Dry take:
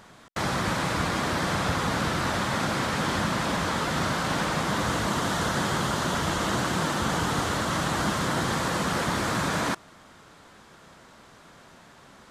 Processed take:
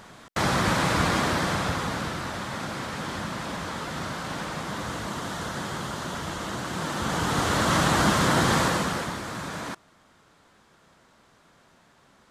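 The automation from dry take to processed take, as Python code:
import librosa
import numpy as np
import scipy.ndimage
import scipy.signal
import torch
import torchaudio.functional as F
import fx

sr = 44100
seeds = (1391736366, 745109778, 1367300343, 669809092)

y = fx.gain(x, sr, db=fx.line((1.14, 3.5), (2.29, -6.0), (6.62, -6.0), (7.71, 5.0), (8.61, 5.0), (9.22, -7.5)))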